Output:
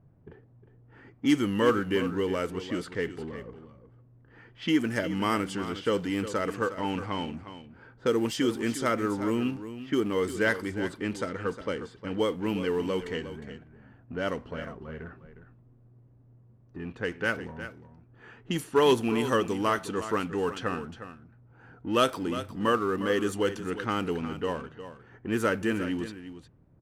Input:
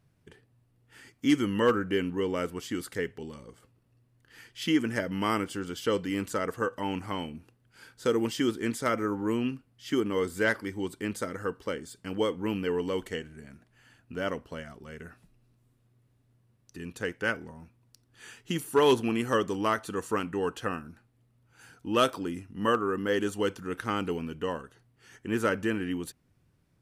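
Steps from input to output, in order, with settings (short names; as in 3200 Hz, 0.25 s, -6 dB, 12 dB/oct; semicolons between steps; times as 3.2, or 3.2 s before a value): G.711 law mismatch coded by mu; low-pass opened by the level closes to 790 Hz, open at -25 dBFS; echo 0.358 s -12 dB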